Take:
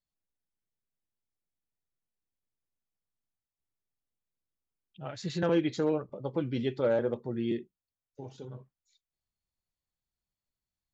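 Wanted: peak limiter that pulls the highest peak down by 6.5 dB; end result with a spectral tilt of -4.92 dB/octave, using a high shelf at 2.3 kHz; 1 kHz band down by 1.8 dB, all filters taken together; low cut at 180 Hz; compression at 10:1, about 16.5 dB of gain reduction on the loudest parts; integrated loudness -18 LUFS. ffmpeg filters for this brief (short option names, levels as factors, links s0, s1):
-af "highpass=180,equalizer=f=1000:t=o:g=-3.5,highshelf=f=2300:g=5,acompressor=threshold=0.01:ratio=10,volume=29.9,alimiter=limit=0.447:level=0:latency=1"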